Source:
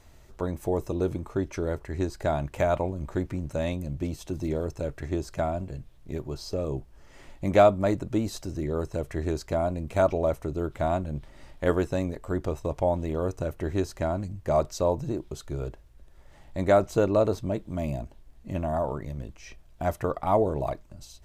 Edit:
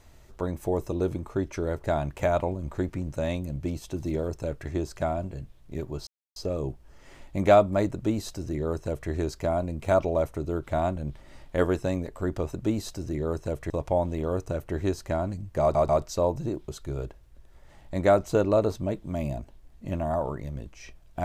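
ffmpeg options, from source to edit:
-filter_complex "[0:a]asplit=7[a][b][c][d][e][f][g];[a]atrim=end=1.842[h];[b]atrim=start=2.208:end=6.44,asetpts=PTS-STARTPTS,afade=t=out:st=4.228:d=0.004:c=hsin,apad=pad_dur=0.29[i];[c]atrim=start=6.44:end=12.612,asetpts=PTS-STARTPTS,afade=t=in:d=0.004:c=hsin[j];[d]atrim=start=8.008:end=9.182[k];[e]atrim=start=12.608:end=14.662[l];[f]atrim=start=14.518:end=14.662[m];[g]atrim=start=14.518[n];[i][j]concat=n=2:v=0:a=1[o];[h][o]acrossfade=d=0.004:c1=hsin:c2=hsin[p];[p][k]acrossfade=d=0.004:c1=hsin:c2=hsin[q];[q][l]acrossfade=d=0.004:c1=hsin:c2=hsin[r];[r][m]acrossfade=d=0.004:c1=hsin:c2=hsin[s];[s][n]acrossfade=d=0.004:c1=hsin:c2=hsin"

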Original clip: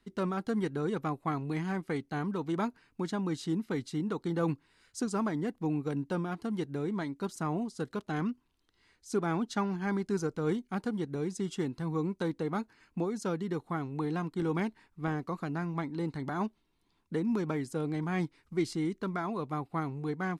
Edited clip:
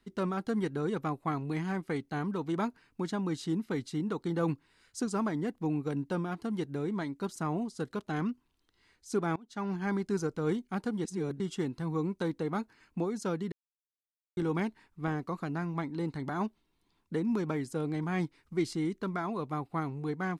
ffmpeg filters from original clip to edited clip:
-filter_complex "[0:a]asplit=6[a][b][c][d][e][f];[a]atrim=end=9.36,asetpts=PTS-STARTPTS,afade=t=out:st=9.356:d=0.004:c=hsin:silence=0.0668344[g];[b]atrim=start=9.36:end=11.052,asetpts=PTS-STARTPTS,afade=t=in:d=0.34:c=qua:silence=0.0668344[h];[c]atrim=start=11.048:end=11.402,asetpts=PTS-STARTPTS,areverse[i];[d]atrim=start=11.398:end=13.52,asetpts=PTS-STARTPTS,afade=t=out:st=2.118:d=0.004:c=hsin[j];[e]atrim=start=13.52:end=14.37,asetpts=PTS-STARTPTS,volume=0[k];[f]atrim=start=14.37,asetpts=PTS-STARTPTS,afade=t=in:d=0.004:c=hsin[l];[g][h]concat=n=2:v=0:a=1[m];[m][i]acrossfade=d=0.004:c1=hsin:c2=hsin[n];[j][k][l]concat=n=3:v=0:a=1[o];[n][o]acrossfade=d=0.004:c1=hsin:c2=hsin"

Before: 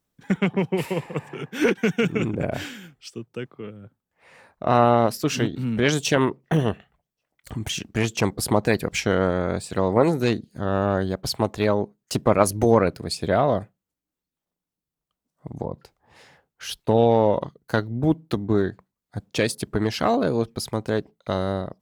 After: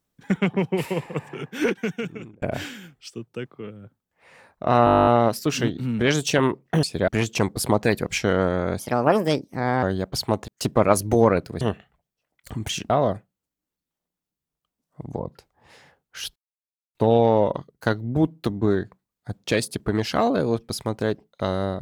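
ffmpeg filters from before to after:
-filter_complex "[0:a]asplit=21[a][b][c][d][e][f][g][h][i][j][k][l][m][n][o][p][q][r][s][t][u];[a]atrim=end=2.42,asetpts=PTS-STARTPTS,afade=t=out:st=1.41:d=1.01[v];[b]atrim=start=2.42:end=4.872,asetpts=PTS-STARTPTS,afade=t=in:d=0.004:c=hsin[w];[c]atrim=start=4.848:end=4.872[x];[d]atrim=start=4.848:end=4.872[y];[e]atrim=start=4.848:end=4.872[z];[f]atrim=start=4.848:end=4.872[aa];[g]atrim=start=4.848:end=4.872[ab];[h]atrim=start=4.848:end=4.872[ac];[i]atrim=start=4.848:end=4.872[ad];[j]atrim=start=4.848:end=4.872[ae];[k]atrim=start=4.848:end=4.872[af];[l]atrim=start=4.848:end=4.872[ag];[m]atrim=start=4.848:end=6.612[ah];[n]atrim=start=13.108:end=13.362[ai];[o]atrim=start=7.898:end=9.614[aj];[p]atrim=start=9.61:end=10.94,asetpts=PTS-STARTPTS,asetrate=56448,aresample=44100[ak];[q]atrim=start=10.936:end=11.592[al];[r]atrim=start=11.978:end=13.112[am];[s]atrim=start=6.608:end=7.902[an];[t]atrim=start=13.358:end=16.82,asetpts=PTS-STARTPTS,afade=t=out:st=3.458:d=0.004:c=hsin,apad=pad_dur=0.59[ao];[u]atrim=start=16.82,asetpts=PTS-STARTPTS,afade=t=in:d=0.004:c=hsin[ap];[v][w]concat=n=2:v=0:a=1[aq];[aq][x]acrossfade=d=0.004:c1=hsin:c2=hsin[ar];[ar][y]acrossfade=d=0.004:c1=hsin:c2=hsin[as];[as][z]acrossfade=d=0.004:c1=hsin:c2=hsin[at];[at][aa]acrossfade=d=0.004:c1=hsin:c2=hsin[au];[au][ab]acrossfade=d=0.004:c1=hsin:c2=hsin[av];[av][ac]acrossfade=d=0.004:c1=hsin:c2=hsin[aw];[aw][ad]acrossfade=d=0.004:c1=hsin:c2=hsin[ax];[ax][ae]acrossfade=d=0.004:c1=hsin:c2=hsin[ay];[ay][af]acrossfade=d=0.004:c1=hsin:c2=hsin[az];[az][ag]acrossfade=d=0.004:c1=hsin:c2=hsin[ba];[ba][ah]acrossfade=d=0.004:c1=hsin:c2=hsin[bb];[bb][ai]acrossfade=d=0.004:c1=hsin:c2=hsin[bc];[bc][aj]acrossfade=d=0.004:c1=hsin:c2=hsin[bd];[bd][ak]acrossfade=d=0.004:c1=hsin:c2=hsin[be];[be][al]acrossfade=d=0.004:c1=hsin:c2=hsin[bf];[bf][am]acrossfade=d=0.004:c1=hsin:c2=hsin[bg];[bg][an]acrossfade=d=0.004:c1=hsin:c2=hsin[bh];[ao][ap]concat=n=2:v=0:a=1[bi];[bh][bi]acrossfade=d=0.004:c1=hsin:c2=hsin"

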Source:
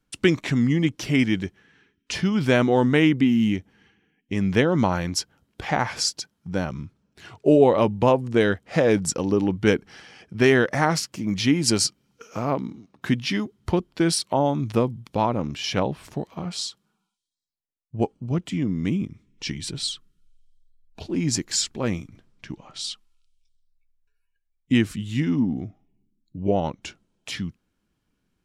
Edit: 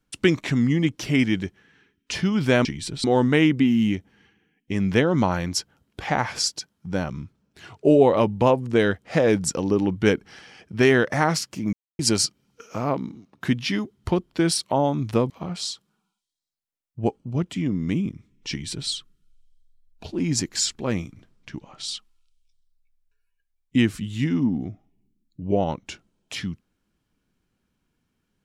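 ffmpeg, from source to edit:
-filter_complex "[0:a]asplit=6[a][b][c][d][e][f];[a]atrim=end=2.652[g];[b]atrim=start=19.458:end=19.852[h];[c]atrim=start=2.648:end=11.34,asetpts=PTS-STARTPTS,afade=t=out:st=8.688:d=0.004:c=hsin[i];[d]atrim=start=11.34:end=11.6,asetpts=PTS-STARTPTS,volume=0[j];[e]atrim=start=11.6:end=14.912,asetpts=PTS-STARTPTS,afade=t=in:d=0.004:c=hsin[k];[f]atrim=start=16.258[l];[g][h]acrossfade=d=0.004:c1=hsin:c2=hsin[m];[i][j][k]concat=n=3:v=0:a=1[n];[m][n]acrossfade=d=0.004:c1=hsin:c2=hsin[o];[o][l]acrossfade=d=0.004:c1=hsin:c2=hsin"

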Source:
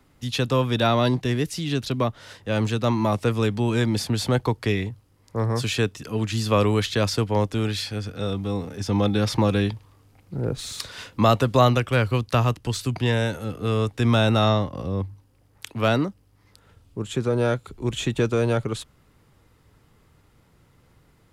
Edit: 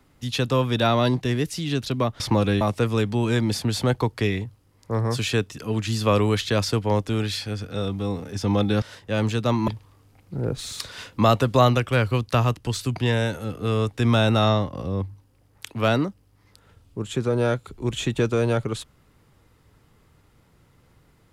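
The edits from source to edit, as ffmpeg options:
-filter_complex "[0:a]asplit=5[a][b][c][d][e];[a]atrim=end=2.202[f];[b]atrim=start=9.268:end=9.682[g];[c]atrim=start=3.058:end=9.272[h];[d]atrim=start=2.198:end=3.062[i];[e]atrim=start=9.678[j];[f][g]acrossfade=d=0.004:c1=hsin:c2=hsin[k];[k][h]acrossfade=d=0.004:c1=hsin:c2=hsin[l];[l][i]acrossfade=d=0.004:c1=hsin:c2=hsin[m];[m][j]acrossfade=d=0.004:c1=hsin:c2=hsin"

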